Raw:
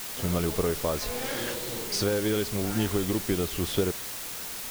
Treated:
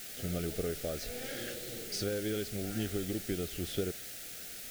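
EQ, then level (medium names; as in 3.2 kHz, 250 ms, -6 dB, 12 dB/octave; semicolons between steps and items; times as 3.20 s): Butterworth band-stop 1 kHz, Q 1.7; -8.0 dB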